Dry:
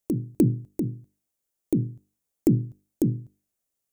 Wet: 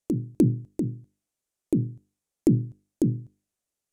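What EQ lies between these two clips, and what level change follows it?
low-pass 10 kHz 12 dB/octave; 0.0 dB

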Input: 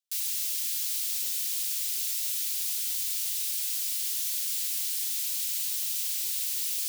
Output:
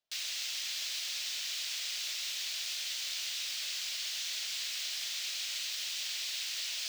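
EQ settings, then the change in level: distance through air 200 m; peaking EQ 630 Hz +10.5 dB 0.41 oct; treble shelf 4.9 kHz +5 dB; +7.0 dB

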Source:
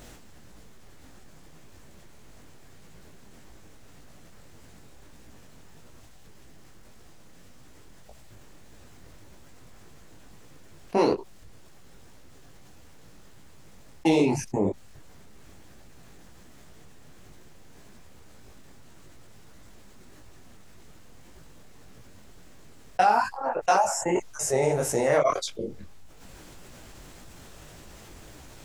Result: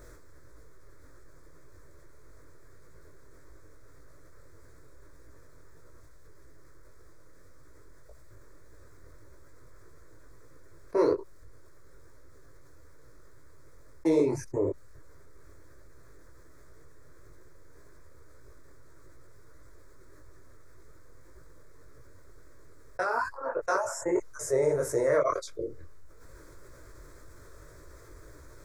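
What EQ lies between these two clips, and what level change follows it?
treble shelf 2.9 kHz -7.5 dB; static phaser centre 780 Hz, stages 6; 0.0 dB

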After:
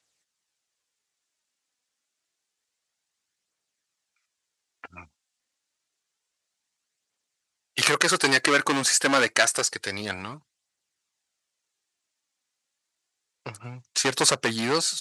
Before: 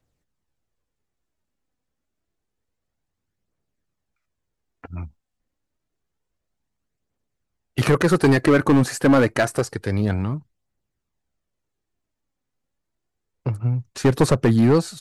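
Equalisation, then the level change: frequency weighting ITU-R 468; -1.0 dB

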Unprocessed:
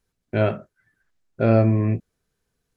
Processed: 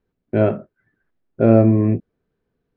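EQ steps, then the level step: distance through air 290 m; peaking EQ 320 Hz +9 dB 2.3 oct; -1.0 dB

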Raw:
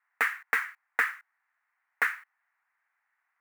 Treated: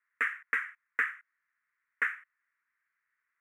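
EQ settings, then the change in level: distance through air 66 m; static phaser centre 1.9 kHz, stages 4; -2.0 dB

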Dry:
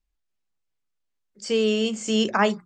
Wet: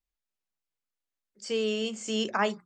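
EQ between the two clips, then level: bass shelf 190 Hz -7.5 dB; -5.5 dB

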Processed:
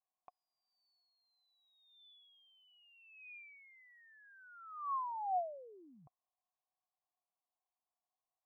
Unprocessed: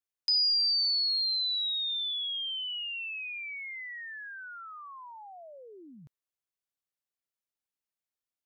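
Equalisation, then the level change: cascade formant filter a; distance through air 230 m; +16.5 dB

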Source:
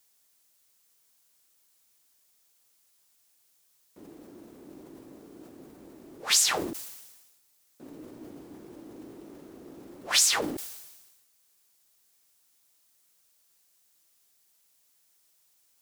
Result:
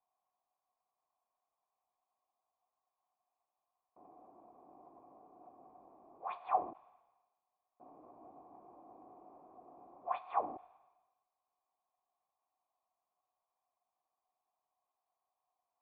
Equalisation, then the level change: cascade formant filter a; +8.0 dB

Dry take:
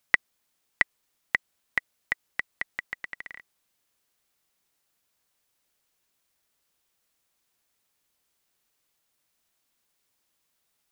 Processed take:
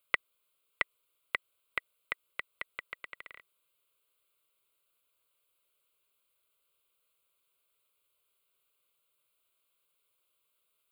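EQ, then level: bass shelf 99 Hz -10.5 dB; static phaser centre 1.2 kHz, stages 8; 0.0 dB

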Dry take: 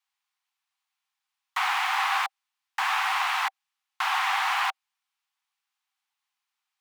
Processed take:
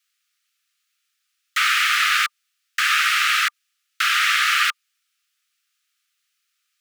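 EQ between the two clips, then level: Chebyshev high-pass 1.2 kHz, order 10; peaking EQ 4.9 kHz +3 dB 1.9 oct; treble shelf 7.3 kHz +5.5 dB; +8.5 dB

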